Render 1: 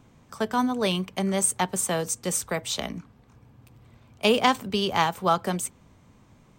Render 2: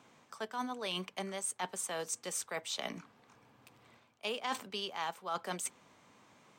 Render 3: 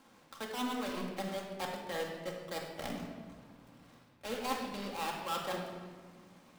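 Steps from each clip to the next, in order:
meter weighting curve A; reversed playback; downward compressor 5 to 1, threshold −36 dBFS, peak gain reduction 18.5 dB; reversed playback
gap after every zero crossing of 0.21 ms; convolution reverb RT60 1.6 s, pre-delay 4 ms, DRR −1 dB

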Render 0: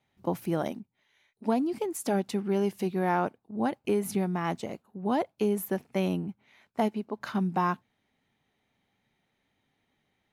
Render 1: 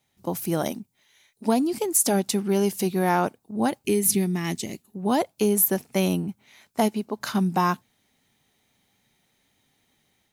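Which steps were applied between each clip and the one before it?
gain on a spectral selection 0:03.84–0:04.94, 410–1,700 Hz −10 dB
bass and treble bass +1 dB, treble +14 dB
automatic gain control gain up to 4.5 dB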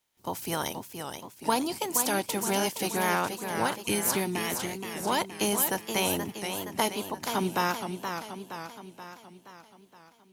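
ceiling on every frequency bin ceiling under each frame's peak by 17 dB
hollow resonant body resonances 920/3,100 Hz, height 7 dB
feedback echo with a swinging delay time 474 ms, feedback 55%, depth 138 cents, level −7 dB
level −6 dB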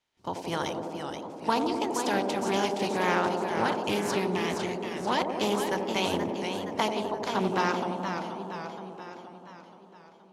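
low-pass filter 5,100 Hz 12 dB per octave
delay with a band-pass on its return 85 ms, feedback 82%, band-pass 420 Hz, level −4 dB
highs frequency-modulated by the lows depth 0.19 ms

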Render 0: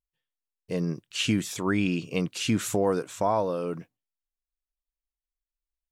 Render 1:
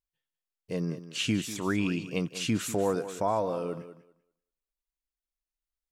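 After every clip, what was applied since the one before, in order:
feedback echo with a high-pass in the loop 194 ms, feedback 18%, high-pass 170 Hz, level −12 dB
level −3 dB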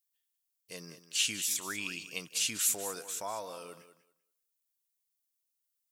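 first-order pre-emphasis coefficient 0.97
level +8.5 dB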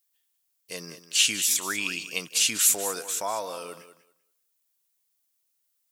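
high-pass filter 200 Hz 6 dB per octave
level +8.5 dB

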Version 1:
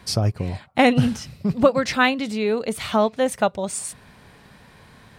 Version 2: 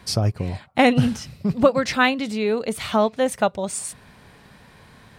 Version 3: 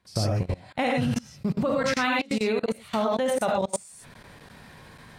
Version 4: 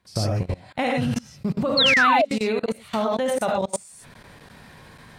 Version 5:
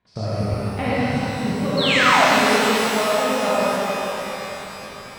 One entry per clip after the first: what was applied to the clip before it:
no processing that can be heard
reverb whose tail is shaped and stops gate 130 ms rising, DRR 0 dB; output level in coarse steps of 24 dB
sound drawn into the spectrogram fall, 0:01.77–0:02.25, 560–4,500 Hz −19 dBFS; level +1.5 dB
low-pass filter 3,300 Hz 12 dB per octave; reverb with rising layers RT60 3.7 s, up +12 semitones, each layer −8 dB, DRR −7 dB; level −4.5 dB

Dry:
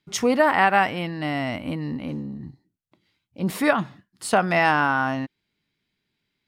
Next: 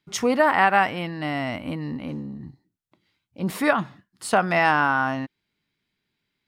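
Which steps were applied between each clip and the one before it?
parametric band 1,200 Hz +2.5 dB 1.4 octaves
level −1.5 dB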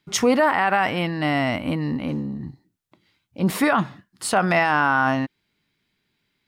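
brickwall limiter −14.5 dBFS, peak gain reduction 10 dB
level +5.5 dB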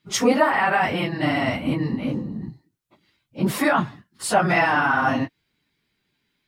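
random phases in long frames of 50 ms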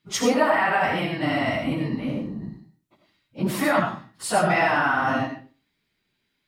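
convolution reverb RT60 0.40 s, pre-delay 40 ms, DRR 3 dB
level −3 dB

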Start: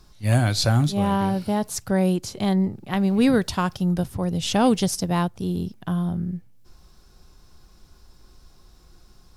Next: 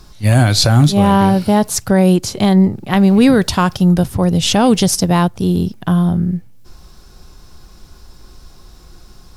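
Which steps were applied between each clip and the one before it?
boost into a limiter +12 dB
level −1 dB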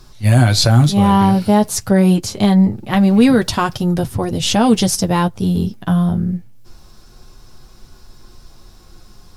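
flanger 0.26 Hz, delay 7.9 ms, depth 2.2 ms, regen −27%
level +2 dB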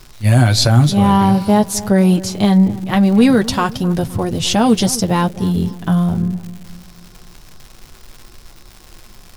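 surface crackle 260 per second −29 dBFS
feedback echo with a low-pass in the loop 260 ms, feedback 49%, low-pass 1,200 Hz, level −16 dB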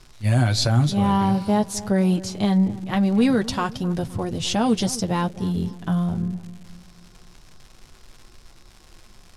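low-pass filter 10,000 Hz 12 dB per octave
level −7.5 dB

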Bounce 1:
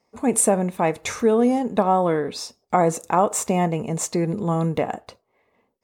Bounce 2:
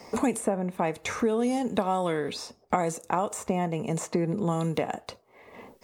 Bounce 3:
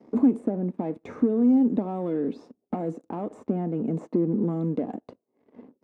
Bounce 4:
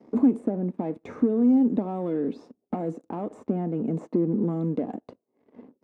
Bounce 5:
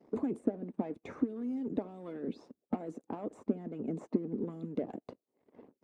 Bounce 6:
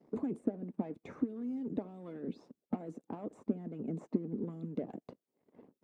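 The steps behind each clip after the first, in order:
multiband upward and downward compressor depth 100%; level −7.5 dB
leveller curve on the samples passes 3; resonant band-pass 270 Hz, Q 3
no processing that can be heard
dynamic equaliser 930 Hz, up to −4 dB, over −41 dBFS, Q 1.3; harmonic and percussive parts rebalanced harmonic −15 dB; level −2 dB
parametric band 160 Hz +5.5 dB 1 octave; level −4 dB

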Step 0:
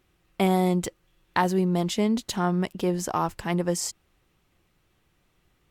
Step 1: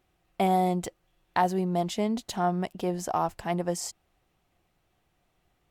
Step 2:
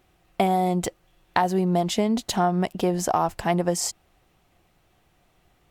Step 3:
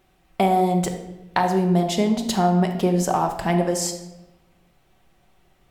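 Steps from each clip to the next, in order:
parametric band 710 Hz +9.5 dB 0.49 octaves; level −5 dB
downward compressor 6 to 1, threshold −26 dBFS, peak gain reduction 7.5 dB; level +8.5 dB
convolution reverb RT60 1.0 s, pre-delay 5 ms, DRR 3.5 dB

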